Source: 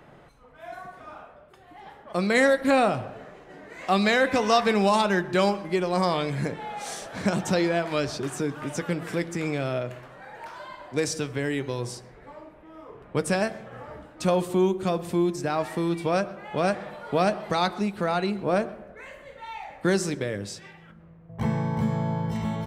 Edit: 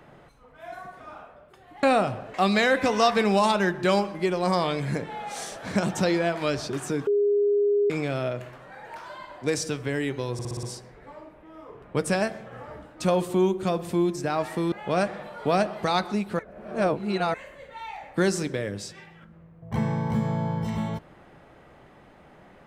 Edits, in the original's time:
1.83–2.7 cut
3.21–3.84 cut
8.57–9.4 bleep 409 Hz -18.5 dBFS
11.83 stutter 0.06 s, 6 plays
15.92–16.39 cut
18.06–19.01 reverse

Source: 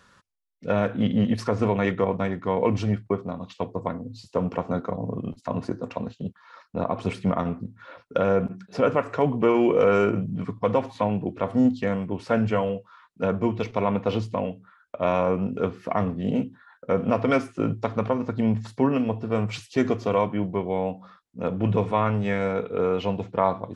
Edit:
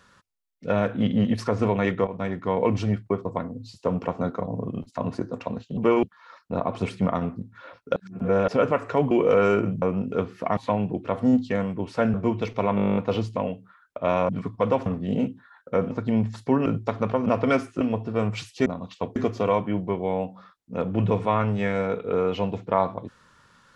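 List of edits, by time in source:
2.07–2.43 fade in equal-power, from -13 dB
3.25–3.75 move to 19.82
8.2–8.72 reverse
9.35–9.61 move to 6.27
10.32–10.89 swap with 15.27–16.02
12.46–13.32 cut
13.94 stutter 0.02 s, 11 plays
17.07–17.62 swap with 18.22–18.97

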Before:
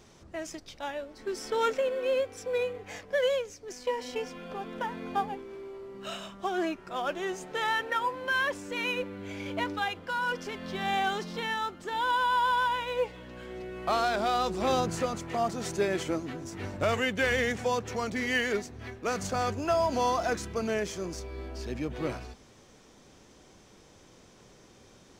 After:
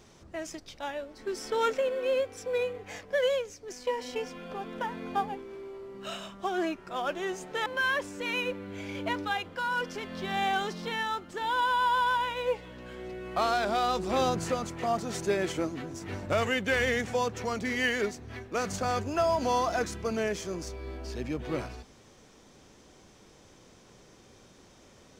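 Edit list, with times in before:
7.66–8.17 cut

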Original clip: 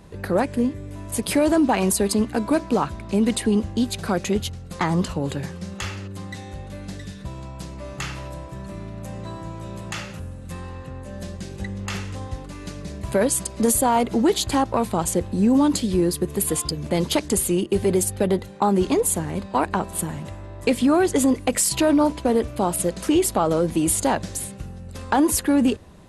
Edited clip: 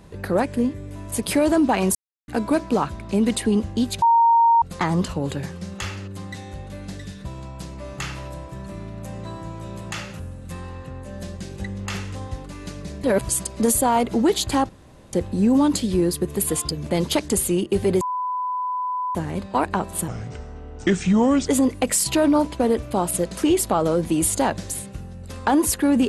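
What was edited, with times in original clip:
1.95–2.28 mute
4.02–4.62 bleep 927 Hz -12 dBFS
13.04–13.29 reverse
14.69–15.13 room tone
18.01–19.15 bleep 1000 Hz -22.5 dBFS
20.08–21.12 speed 75%

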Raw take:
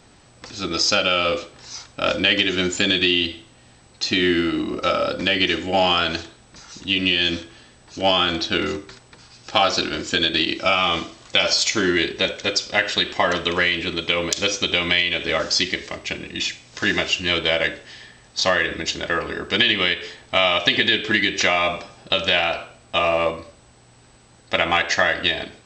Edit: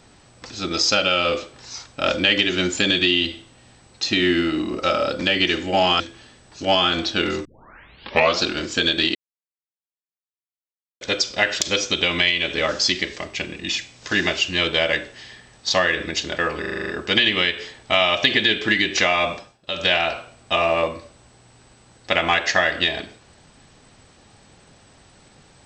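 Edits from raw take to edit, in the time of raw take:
6–7.36 cut
8.81 tape start 0.96 s
10.51–12.37 mute
12.97–14.32 cut
19.31 stutter 0.04 s, 8 plays
21.77–22.3 dip -18 dB, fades 0.24 s

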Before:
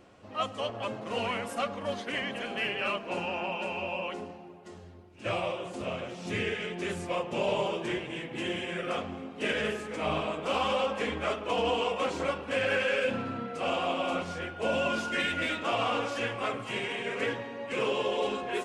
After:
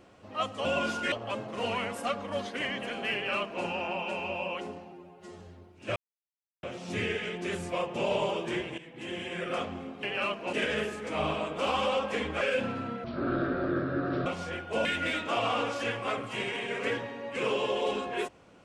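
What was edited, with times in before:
2.67–3.17 copy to 9.4
4.45–4.77 stretch 1.5×
5.33–6 mute
8.15–8.83 fade in, from -13.5 dB
11.28–12.91 cut
13.54–14.15 speed 50%
14.74–15.21 move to 0.65

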